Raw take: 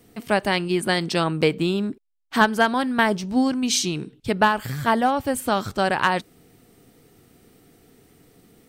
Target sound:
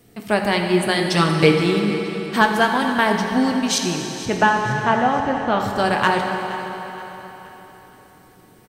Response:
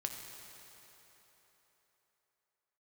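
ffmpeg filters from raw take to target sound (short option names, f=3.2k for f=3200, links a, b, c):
-filter_complex "[0:a]asettb=1/sr,asplit=3[a][b][c];[a]atrim=end=1.104[d];[b]atrim=start=1.1:end=1.57,asetpts=PTS-STARTPTS,afade=t=in:d=0.004:c=qsin,afade=t=out:st=0.466:d=0.004:c=qsin,aecho=1:1:6.8:1,atrim=end_sample=20727[e];[c]atrim=start=1.566[f];[d][e]acrossfade=d=0.004:c1=hsin:c2=qsin[g];[g][f]acrossfade=d=0.004:c1=qsin:c2=hsin,asettb=1/sr,asplit=3[h][i][j];[h]atrim=end=3.784[k];[i]atrim=start=3.78:end=5.6,asetpts=PTS-STARTPTS,afade=t=in:d=0.004:c=qsin,afade=t=out:st=1.816:d=0.004:c=qsin,lowpass=f=3.2k:w=0.5412,lowpass=f=3.2k:w=1.3066[l];[j]atrim=start=5.596[m];[k][l]acrossfade=d=0.004:c1=hsin:c2=qsin[n];[n][m]acrossfade=d=0.004:c1=qsin:c2=hsin,aecho=1:1:472|944|1416|1888:0.158|0.0666|0.028|0.0117[o];[1:a]atrim=start_sample=2205[p];[o][p]afir=irnorm=-1:irlink=0,volume=2.5dB"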